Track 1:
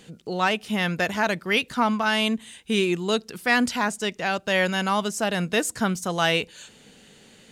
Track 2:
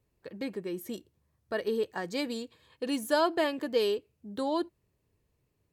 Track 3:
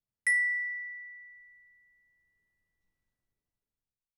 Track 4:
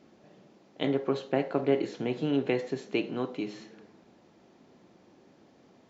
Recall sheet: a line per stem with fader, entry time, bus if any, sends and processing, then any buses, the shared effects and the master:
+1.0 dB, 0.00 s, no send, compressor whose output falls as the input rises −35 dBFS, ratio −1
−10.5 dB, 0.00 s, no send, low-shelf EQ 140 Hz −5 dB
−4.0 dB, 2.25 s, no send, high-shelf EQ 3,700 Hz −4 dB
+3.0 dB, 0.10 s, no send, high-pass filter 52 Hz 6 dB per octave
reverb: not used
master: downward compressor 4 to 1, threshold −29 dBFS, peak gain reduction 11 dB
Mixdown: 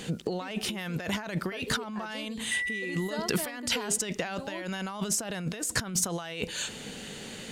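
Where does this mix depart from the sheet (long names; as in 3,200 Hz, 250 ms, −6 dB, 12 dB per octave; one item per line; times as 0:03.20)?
stem 4: muted
master: missing downward compressor 4 to 1, threshold −29 dBFS, peak gain reduction 11 dB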